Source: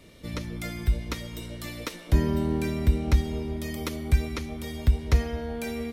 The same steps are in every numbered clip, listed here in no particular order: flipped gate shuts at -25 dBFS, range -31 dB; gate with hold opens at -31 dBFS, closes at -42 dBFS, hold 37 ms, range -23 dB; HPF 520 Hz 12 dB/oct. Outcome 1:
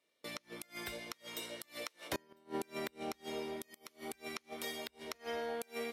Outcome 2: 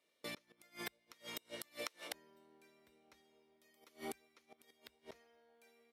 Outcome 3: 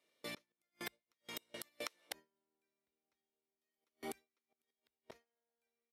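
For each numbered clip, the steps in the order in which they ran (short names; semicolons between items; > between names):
gate with hold > HPF > flipped gate; gate with hold > flipped gate > HPF; flipped gate > gate with hold > HPF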